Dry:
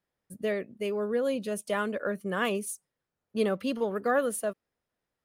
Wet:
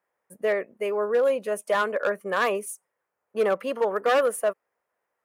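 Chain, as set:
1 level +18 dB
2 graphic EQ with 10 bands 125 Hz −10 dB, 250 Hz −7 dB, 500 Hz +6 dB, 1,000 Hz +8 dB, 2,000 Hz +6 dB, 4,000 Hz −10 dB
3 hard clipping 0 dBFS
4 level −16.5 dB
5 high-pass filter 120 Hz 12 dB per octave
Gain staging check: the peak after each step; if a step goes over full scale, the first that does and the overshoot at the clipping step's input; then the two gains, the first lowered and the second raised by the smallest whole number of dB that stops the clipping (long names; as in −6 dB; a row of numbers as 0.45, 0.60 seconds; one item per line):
+2.5, +9.5, 0.0, −16.5, −13.0 dBFS
step 1, 9.5 dB
step 1 +8 dB, step 4 −6.5 dB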